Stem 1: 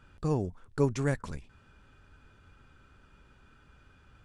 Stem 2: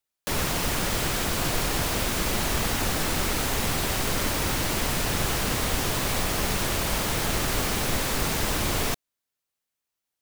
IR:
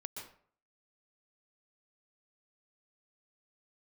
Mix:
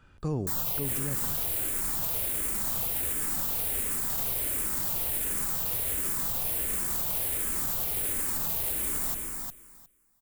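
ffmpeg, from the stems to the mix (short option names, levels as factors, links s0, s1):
-filter_complex "[0:a]acrossover=split=420[s0][s1];[s1]acompressor=threshold=0.0141:ratio=6[s2];[s0][s2]amix=inputs=2:normalize=0,volume=0.891,asplit=2[s3][s4];[s4]volume=0.224[s5];[1:a]aexciter=amount=7:drive=2.7:freq=7800,asplit=2[s6][s7];[s7]afreqshift=-1.4[s8];[s6][s8]amix=inputs=2:normalize=1,adelay=200,volume=0.355,asplit=3[s9][s10][s11];[s10]volume=0.398[s12];[s11]volume=0.473[s13];[2:a]atrim=start_sample=2205[s14];[s5][s12]amix=inputs=2:normalize=0[s15];[s15][s14]afir=irnorm=-1:irlink=0[s16];[s13]aecho=0:1:358|716|1074:1|0.15|0.0225[s17];[s3][s9][s16][s17]amix=inputs=4:normalize=0,alimiter=limit=0.0944:level=0:latency=1:release=11"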